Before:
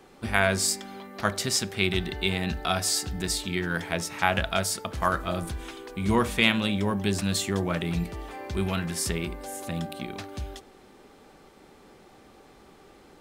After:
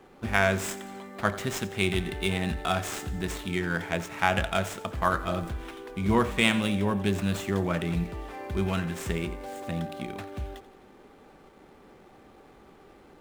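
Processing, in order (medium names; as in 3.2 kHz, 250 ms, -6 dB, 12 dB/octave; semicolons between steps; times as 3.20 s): median filter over 9 samples; thinning echo 87 ms, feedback 55%, level -16.5 dB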